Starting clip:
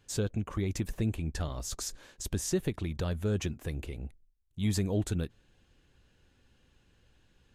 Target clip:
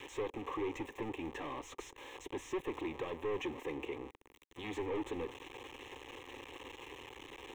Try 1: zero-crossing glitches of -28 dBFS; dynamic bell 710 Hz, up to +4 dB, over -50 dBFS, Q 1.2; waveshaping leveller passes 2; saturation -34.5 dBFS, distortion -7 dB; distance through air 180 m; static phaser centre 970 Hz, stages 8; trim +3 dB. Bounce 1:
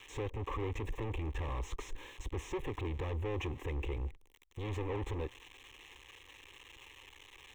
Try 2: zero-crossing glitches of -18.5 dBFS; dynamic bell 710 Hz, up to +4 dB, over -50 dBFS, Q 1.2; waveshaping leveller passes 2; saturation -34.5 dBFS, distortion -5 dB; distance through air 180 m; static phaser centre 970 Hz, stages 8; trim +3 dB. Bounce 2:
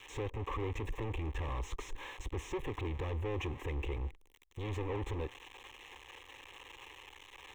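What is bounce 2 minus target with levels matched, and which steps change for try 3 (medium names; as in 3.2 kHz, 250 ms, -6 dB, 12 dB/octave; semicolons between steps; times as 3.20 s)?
250 Hz band -5.0 dB
add after dynamic bell: high-pass 210 Hz 24 dB/octave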